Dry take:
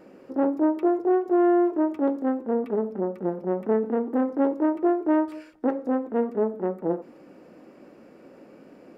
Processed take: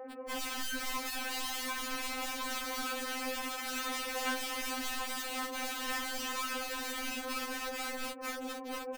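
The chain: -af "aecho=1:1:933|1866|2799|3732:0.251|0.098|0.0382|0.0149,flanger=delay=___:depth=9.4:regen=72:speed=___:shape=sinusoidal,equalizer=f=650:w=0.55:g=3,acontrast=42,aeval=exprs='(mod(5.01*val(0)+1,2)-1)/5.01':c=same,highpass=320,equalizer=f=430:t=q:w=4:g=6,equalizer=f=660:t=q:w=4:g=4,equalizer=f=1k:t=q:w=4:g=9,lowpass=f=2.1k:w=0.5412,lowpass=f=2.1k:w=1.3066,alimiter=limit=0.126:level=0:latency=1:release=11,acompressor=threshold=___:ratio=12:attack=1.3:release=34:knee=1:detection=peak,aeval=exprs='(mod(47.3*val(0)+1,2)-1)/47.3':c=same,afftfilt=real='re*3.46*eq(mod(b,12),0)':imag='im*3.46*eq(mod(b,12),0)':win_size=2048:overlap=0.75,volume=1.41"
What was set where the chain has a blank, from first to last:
9.9, 1.4, 0.0282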